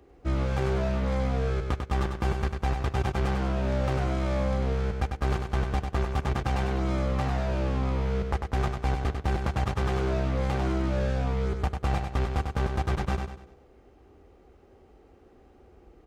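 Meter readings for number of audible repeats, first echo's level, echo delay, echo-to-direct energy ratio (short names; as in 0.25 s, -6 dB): 4, -5.5 dB, 97 ms, -5.0 dB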